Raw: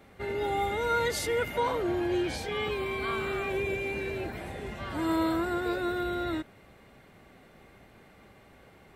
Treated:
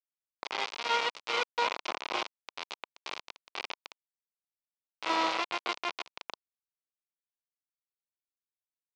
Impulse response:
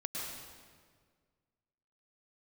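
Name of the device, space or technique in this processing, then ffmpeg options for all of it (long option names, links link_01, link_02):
hand-held game console: -af "acrusher=bits=3:mix=0:aa=0.000001,highpass=470,equalizer=frequency=1000:width_type=q:width=4:gain=4,equalizer=frequency=1700:width_type=q:width=4:gain=-7,equalizer=frequency=2400:width_type=q:width=4:gain=3,lowpass=frequency=5000:width=0.5412,lowpass=frequency=5000:width=1.3066,volume=-1.5dB"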